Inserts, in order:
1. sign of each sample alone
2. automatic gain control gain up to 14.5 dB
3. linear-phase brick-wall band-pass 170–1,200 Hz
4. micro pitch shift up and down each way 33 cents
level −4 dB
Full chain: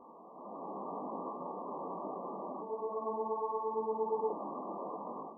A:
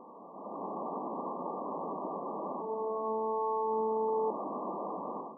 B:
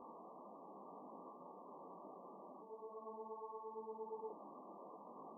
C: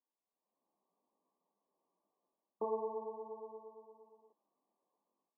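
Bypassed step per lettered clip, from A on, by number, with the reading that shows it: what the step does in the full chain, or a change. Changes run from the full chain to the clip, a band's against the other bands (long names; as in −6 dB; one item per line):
4, change in crest factor −3.5 dB
2, change in momentary loudness spread −1 LU
1, change in crest factor +6.0 dB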